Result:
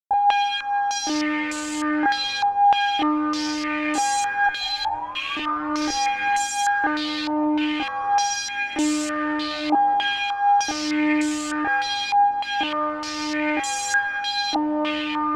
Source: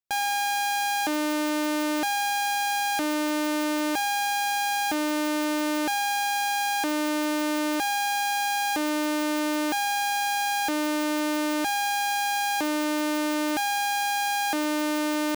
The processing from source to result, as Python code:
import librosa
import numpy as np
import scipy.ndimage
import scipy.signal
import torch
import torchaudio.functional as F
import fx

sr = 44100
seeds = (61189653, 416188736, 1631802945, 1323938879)

p1 = fx.rattle_buzz(x, sr, strikes_db=-41.0, level_db=-25.0)
p2 = fx.differentiator(p1, sr, at=(4.46, 5.37))
p3 = fx.tremolo_shape(p2, sr, shape='saw_up', hz=0.65, depth_pct=35)
p4 = fx.low_shelf(p3, sr, hz=480.0, db=6.5)
p5 = fx.echo_feedback(p4, sr, ms=189, feedback_pct=51, wet_db=-22.5)
p6 = fx.over_compress(p5, sr, threshold_db=-27.0, ratio=-1.0)
p7 = p5 + (p6 * librosa.db_to_amplitude(2.0))
p8 = fx.spec_paint(p7, sr, seeds[0], shape='rise', start_s=4.6, length_s=1.36, low_hz=750.0, high_hz=1700.0, level_db=-36.0)
p9 = p8 + fx.echo_wet_highpass(p8, sr, ms=467, feedback_pct=53, hz=1900.0, wet_db=-9.0, dry=0)
p10 = fx.fuzz(p9, sr, gain_db=29.0, gate_db=-37.0)
p11 = fx.chorus_voices(p10, sr, voices=6, hz=0.21, base_ms=27, depth_ms=2.2, mix_pct=60)
p12 = fx.filter_held_lowpass(p11, sr, hz=3.3, low_hz=850.0, high_hz=7500.0)
y = p12 * librosa.db_to_amplitude(-6.5)